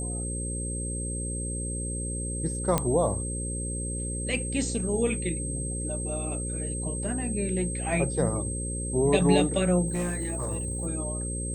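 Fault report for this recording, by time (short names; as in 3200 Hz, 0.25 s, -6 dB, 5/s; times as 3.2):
buzz 60 Hz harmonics 9 -33 dBFS
tone 8300 Hz -34 dBFS
2.78 pop -9 dBFS
9.87–10.87 clipped -25 dBFS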